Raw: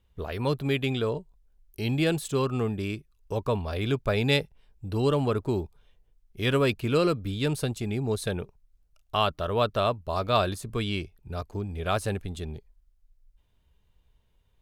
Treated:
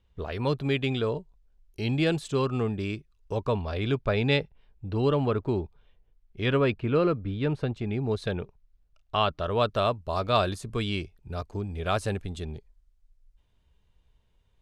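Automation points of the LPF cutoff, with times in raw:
3.4 s 6200 Hz
4.39 s 3600 Hz
6.41 s 3600 Hz
6.89 s 2100 Hz
7.56 s 2100 Hz
8.33 s 4500 Hz
9.29 s 4500 Hz
9.7 s 8800 Hz

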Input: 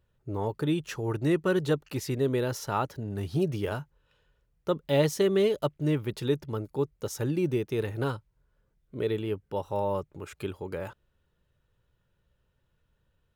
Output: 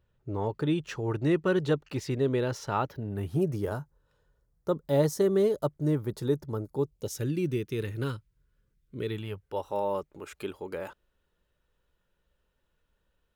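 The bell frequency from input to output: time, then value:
bell -14 dB 0.96 oct
2.68 s 13000 Hz
3.62 s 2700 Hz
6.71 s 2700 Hz
7.3 s 750 Hz
9.03 s 750 Hz
9.68 s 110 Hz

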